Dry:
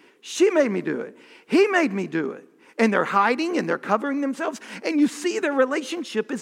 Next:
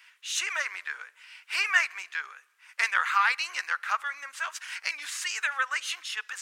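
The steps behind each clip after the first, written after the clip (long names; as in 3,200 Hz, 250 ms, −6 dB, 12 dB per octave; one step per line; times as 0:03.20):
high-pass filter 1,300 Hz 24 dB per octave
level +1.5 dB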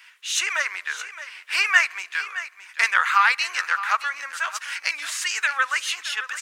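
single-tap delay 618 ms −13.5 dB
level +6 dB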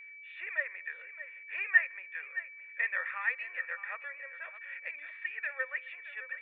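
formant resonators in series e
steady tone 2,300 Hz −47 dBFS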